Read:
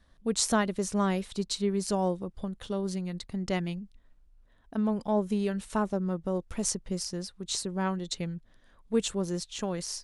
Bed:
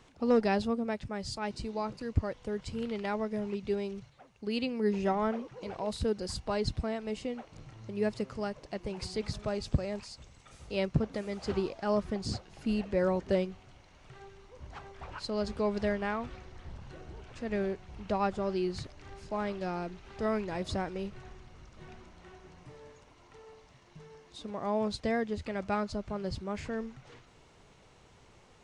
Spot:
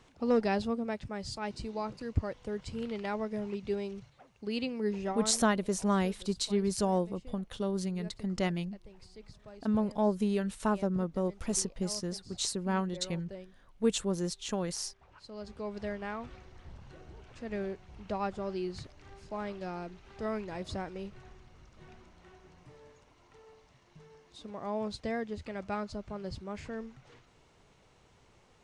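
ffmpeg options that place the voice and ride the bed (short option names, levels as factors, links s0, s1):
-filter_complex "[0:a]adelay=4900,volume=0.891[s0];[1:a]volume=3.76,afade=t=out:st=4.67:d=0.98:silence=0.16788,afade=t=in:st=15.04:d=1.27:silence=0.223872[s1];[s0][s1]amix=inputs=2:normalize=0"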